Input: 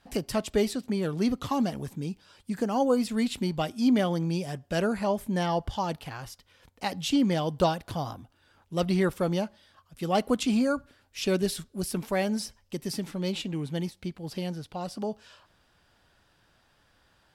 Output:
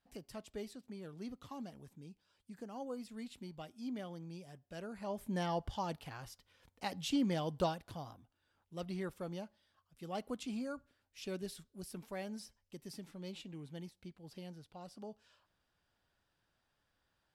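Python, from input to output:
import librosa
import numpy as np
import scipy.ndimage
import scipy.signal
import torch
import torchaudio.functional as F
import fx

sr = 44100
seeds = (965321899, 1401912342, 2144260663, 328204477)

y = fx.gain(x, sr, db=fx.line((4.87, -19.5), (5.3, -9.0), (7.56, -9.0), (8.17, -16.0)))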